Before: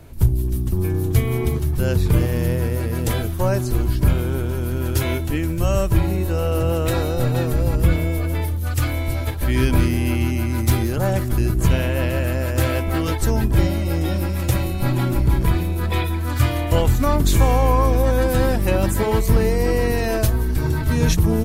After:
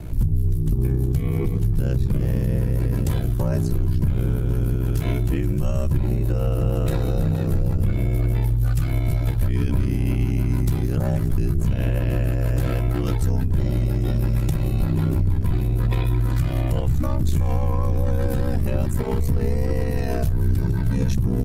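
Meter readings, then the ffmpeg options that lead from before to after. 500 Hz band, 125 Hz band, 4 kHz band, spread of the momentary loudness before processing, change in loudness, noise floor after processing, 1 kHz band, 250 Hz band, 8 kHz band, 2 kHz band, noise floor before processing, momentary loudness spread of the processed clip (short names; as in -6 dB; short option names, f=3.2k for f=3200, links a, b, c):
-7.0 dB, -0.5 dB, -10.5 dB, 5 LU, -2.0 dB, -23 dBFS, -10.0 dB, -3.0 dB, -10.5 dB, -10.0 dB, -23 dBFS, 1 LU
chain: -af "acontrast=33,lowshelf=f=280:g=11.5,aeval=exprs='val(0)*sin(2*PI*32*n/s)':c=same,alimiter=limit=-12dB:level=0:latency=1:release=439"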